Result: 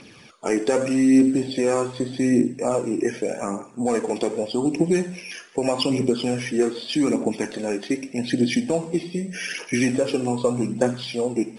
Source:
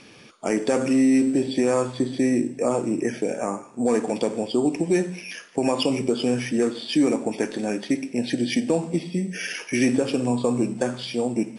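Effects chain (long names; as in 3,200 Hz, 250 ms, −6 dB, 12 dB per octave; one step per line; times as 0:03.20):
phase shifter 0.83 Hz, delay 2.9 ms, feedback 42%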